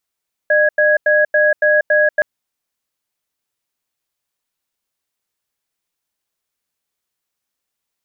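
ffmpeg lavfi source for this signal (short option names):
-f lavfi -i "aevalsrc='0.237*(sin(2*PI*605*t)+sin(2*PI*1660*t))*clip(min(mod(t,0.28),0.19-mod(t,0.28))/0.005,0,1)':d=1.72:s=44100"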